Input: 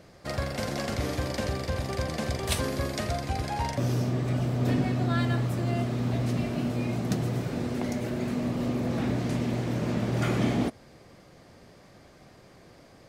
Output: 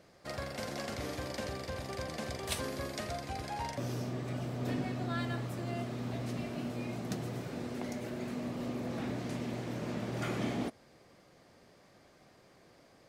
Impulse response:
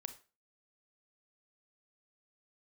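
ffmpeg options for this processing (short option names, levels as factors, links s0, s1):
-af "lowshelf=f=160:g=-8,volume=0.473"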